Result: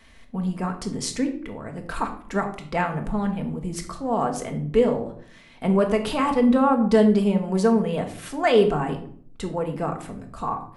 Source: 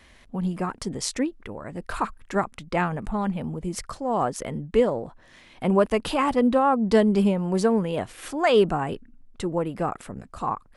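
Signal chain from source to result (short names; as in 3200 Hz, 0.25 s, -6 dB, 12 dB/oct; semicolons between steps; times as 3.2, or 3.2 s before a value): shoebox room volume 790 m³, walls furnished, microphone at 1.6 m; gain -1.5 dB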